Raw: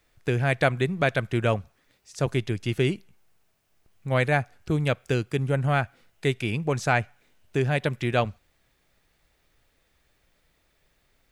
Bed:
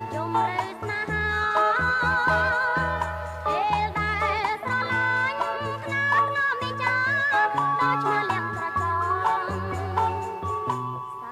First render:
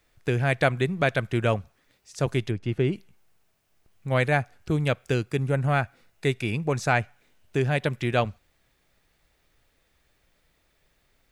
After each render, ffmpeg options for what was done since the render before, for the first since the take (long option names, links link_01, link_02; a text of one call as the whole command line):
ffmpeg -i in.wav -filter_complex "[0:a]asplit=3[link_01][link_02][link_03];[link_01]afade=type=out:start_time=2.5:duration=0.02[link_04];[link_02]lowpass=frequency=1300:poles=1,afade=type=in:start_time=2.5:duration=0.02,afade=type=out:start_time=2.92:duration=0.02[link_05];[link_03]afade=type=in:start_time=2.92:duration=0.02[link_06];[link_04][link_05][link_06]amix=inputs=3:normalize=0,asettb=1/sr,asplit=3[link_07][link_08][link_09];[link_07]atrim=end=5.234[link_10];[link_08]atrim=start=5.23:end=6.91,asetpts=PTS-STARTPTS,afade=type=in:duration=0.004:curve=qsin,afade=type=out:start_time=1.676:duration=0.004:curve=qsin,bandreject=frequency=3100:width=12[link_11];[link_09]atrim=start=6.906[link_12];[link_10][link_11]acrossfade=duration=0.004:curve1=hsin:curve2=qsin[link_13];[link_13][link_12]acrossfade=duration=0.004:curve1=qsin:curve2=hsin" out.wav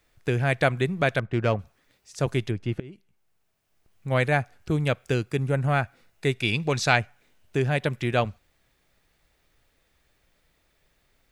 ffmpeg -i in.wav -filter_complex "[0:a]asettb=1/sr,asplit=3[link_01][link_02][link_03];[link_01]atrim=end=1.194[link_04];[link_02]atrim=start=1.19:end=1.59,asetpts=PTS-STARTPTS,afade=type=in:duration=0.004:curve=qsin,afade=type=out:start_time=0.396:duration=0.004:curve=qsin,adynamicsmooth=sensitivity=1.5:basefreq=1800[link_05];[link_03]atrim=start=1.586[link_06];[link_04][link_05]acrossfade=duration=0.004:curve1=hsin:curve2=qsin[link_07];[link_07][link_06]acrossfade=duration=0.004:curve1=qsin:curve2=hsin,asplit=3[link_08][link_09][link_10];[link_08]afade=type=out:start_time=6.42:duration=0.02[link_11];[link_09]equalizer=frequency=3800:width_type=o:width=1.3:gain=13,afade=type=in:start_time=6.42:duration=0.02,afade=type=out:start_time=6.95:duration=0.02[link_12];[link_10]afade=type=in:start_time=6.95:duration=0.02[link_13];[link_11][link_12][link_13]amix=inputs=3:normalize=0,asplit=2[link_14][link_15];[link_14]atrim=end=2.8,asetpts=PTS-STARTPTS,afade=type=out:start_time=2.796:duration=0.004:curve=hsin:silence=0.0749894[link_16];[link_15]atrim=start=2.8,asetpts=PTS-STARTPTS,afade=type=in:duration=1.29:silence=0.0749894[link_17];[link_16][link_17]concat=n=2:v=0:a=1" out.wav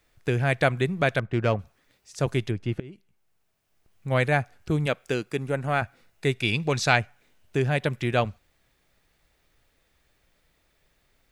ffmpeg -i in.wav -filter_complex "[0:a]asettb=1/sr,asplit=3[link_01][link_02][link_03];[link_01]atrim=end=4.864[link_04];[link_02]atrim=start=4.86:end=5.82,asetpts=PTS-STARTPTS,afade=type=in:duration=0.004:curve=qsin,afade=type=out:start_time=0.956:duration=0.004:curve=qsin,equalizer=frequency=93:width_type=o:width=1.1:gain=-13.5[link_05];[link_03]atrim=start=5.816[link_06];[link_04][link_05]acrossfade=duration=0.004:curve1=hsin:curve2=qsin[link_07];[link_07][link_06]acrossfade=duration=0.004:curve1=qsin:curve2=hsin" out.wav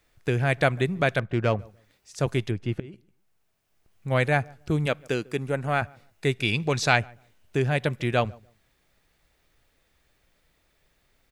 ffmpeg -i in.wav -filter_complex "[0:a]asplit=2[link_01][link_02];[link_02]adelay=146,lowpass=frequency=910:poles=1,volume=-23.5dB,asplit=2[link_03][link_04];[link_04]adelay=146,lowpass=frequency=910:poles=1,volume=0.23[link_05];[link_01][link_03][link_05]amix=inputs=3:normalize=0" out.wav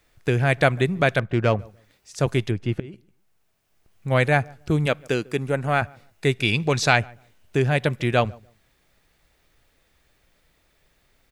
ffmpeg -i in.wav -af "volume=3.5dB,alimiter=limit=-2dB:level=0:latency=1" out.wav